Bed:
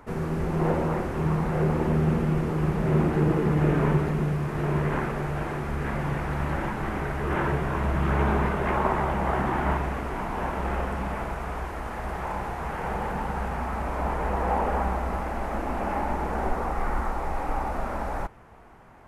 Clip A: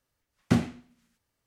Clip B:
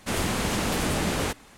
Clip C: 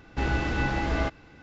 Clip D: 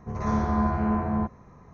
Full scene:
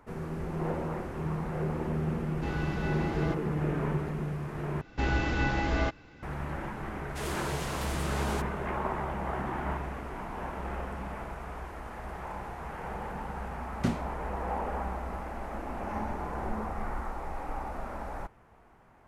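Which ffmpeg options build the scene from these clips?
ffmpeg -i bed.wav -i cue0.wav -i cue1.wav -i cue2.wav -i cue3.wav -filter_complex "[3:a]asplit=2[link_01][link_02];[0:a]volume=-8dB[link_03];[2:a]highpass=350[link_04];[4:a]asplit=2[link_05][link_06];[link_06]adelay=3.6,afreqshift=1.5[link_07];[link_05][link_07]amix=inputs=2:normalize=1[link_08];[link_03]asplit=2[link_09][link_10];[link_09]atrim=end=4.814[link_11];[link_02]atrim=end=1.42,asetpts=PTS-STARTPTS,volume=-1.5dB[link_12];[link_10]atrim=start=6.226[link_13];[link_01]atrim=end=1.42,asetpts=PTS-STARTPTS,volume=-9dB,afade=type=in:duration=0.004:curve=hsin,afade=type=out:start_time=1.416:duration=0.004:curve=hsin,adelay=2250[link_14];[link_04]atrim=end=1.57,asetpts=PTS-STARTPTS,volume=-10dB,afade=type=in:duration=0.004:curve=hsin,afade=type=out:start_time=1.566:duration=0.004:curve=hsin,adelay=7090[link_15];[1:a]atrim=end=1.46,asetpts=PTS-STARTPTS,volume=-6dB,afade=type=in:duration=0.004:curve=hsin,afade=type=out:start_time=1.456:duration=0.004:curve=hsin,adelay=13330[link_16];[link_08]atrim=end=1.73,asetpts=PTS-STARTPTS,volume=-13dB,afade=type=in:duration=0.004:curve=hsin,afade=type=out:start_time=1.726:duration=0.004:curve=hsin,adelay=15670[link_17];[link_11][link_12]acrossfade=duration=0.004:curve1=hsin:curve2=hsin[link_18];[link_18][link_13]acrossfade=duration=0.004:curve1=hsin:curve2=hsin[link_19];[link_19][link_14][link_15][link_16][link_17]amix=inputs=5:normalize=0" out.wav

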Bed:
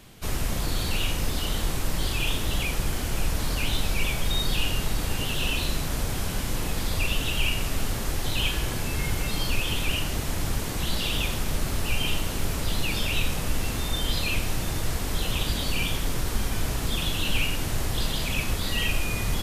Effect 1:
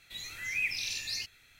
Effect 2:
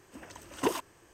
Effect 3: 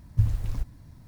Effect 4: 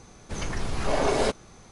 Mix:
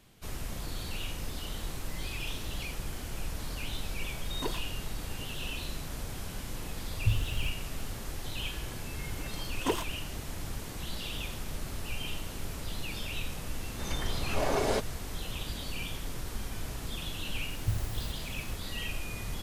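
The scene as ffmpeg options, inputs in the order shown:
ffmpeg -i bed.wav -i cue0.wav -i cue1.wav -i cue2.wav -i cue3.wav -filter_complex "[2:a]asplit=2[link_01][link_02];[3:a]asplit=2[link_03][link_04];[0:a]volume=-10.5dB[link_05];[link_04]aemphasis=mode=production:type=50fm[link_06];[1:a]atrim=end=1.59,asetpts=PTS-STARTPTS,volume=-16dB,afade=type=in:duration=0.004:curve=hsin,afade=type=out:start_time=1.586:duration=0.004:curve=hsin,adelay=1490[link_07];[link_01]atrim=end=1.13,asetpts=PTS-STARTPTS,volume=-7.5dB,afade=type=in:duration=0.004:curve=hsin,afade=type=out:start_time=1.126:duration=0.004:curve=hsin,adelay=3790[link_08];[link_03]atrim=end=1.07,asetpts=PTS-STARTPTS,volume=-5dB,afade=type=in:duration=0.004:curve=hsin,afade=type=out:start_time=1.066:duration=0.004:curve=hsin,adelay=6880[link_09];[link_02]atrim=end=1.13,asetpts=PTS-STARTPTS,volume=-1.5dB,afade=type=in:duration=0.004:curve=hsin,afade=type=out:start_time=1.126:duration=0.004:curve=hsin,adelay=9030[link_10];[4:a]atrim=end=1.71,asetpts=PTS-STARTPTS,volume=-5dB,afade=type=in:duration=0.004:curve=hsin,afade=type=out:start_time=1.706:duration=0.004:curve=hsin,adelay=13490[link_11];[link_06]atrim=end=1.07,asetpts=PTS-STARTPTS,volume=-8dB,afade=type=in:duration=0.004:curve=hsin,afade=type=out:start_time=1.066:duration=0.004:curve=hsin,adelay=17490[link_12];[link_05][link_07][link_08][link_09][link_10][link_11][link_12]amix=inputs=7:normalize=0" out.wav

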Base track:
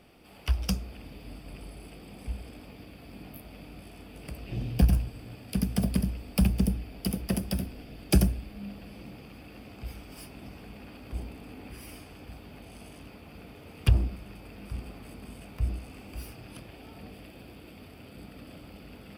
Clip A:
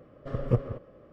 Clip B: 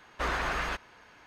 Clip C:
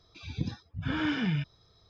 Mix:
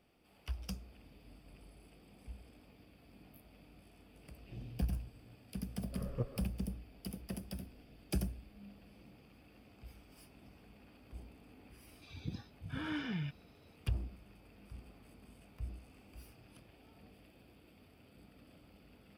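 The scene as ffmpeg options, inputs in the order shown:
ffmpeg -i bed.wav -i cue0.wav -i cue1.wav -i cue2.wav -filter_complex "[0:a]volume=-14dB[link_01];[1:a]atrim=end=1.12,asetpts=PTS-STARTPTS,volume=-13dB,afade=type=in:duration=0.004:curve=hsin,afade=type=out:start_time=1.116:duration=0.004:curve=hsin,adelay=5670[link_02];[3:a]atrim=end=1.89,asetpts=PTS-STARTPTS,volume=-9.5dB,afade=type=in:duration=0.004:curve=hsin,afade=type=out:start_time=1.886:duration=0.004:curve=hsin,adelay=11870[link_03];[link_01][link_02][link_03]amix=inputs=3:normalize=0" out.wav

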